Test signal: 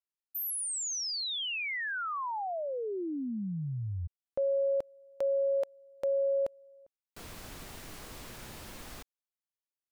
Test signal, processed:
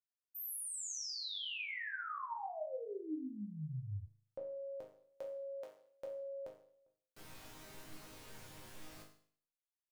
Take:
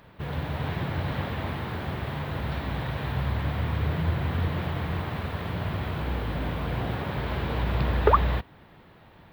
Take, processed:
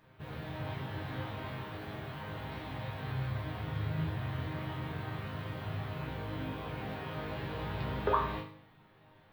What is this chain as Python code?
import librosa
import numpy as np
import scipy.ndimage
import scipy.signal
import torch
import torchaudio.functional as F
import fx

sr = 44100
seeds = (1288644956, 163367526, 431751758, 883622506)

y = fx.resonator_bank(x, sr, root=44, chord='major', decay_s=0.54)
y = y * librosa.db_to_amplitude(8.0)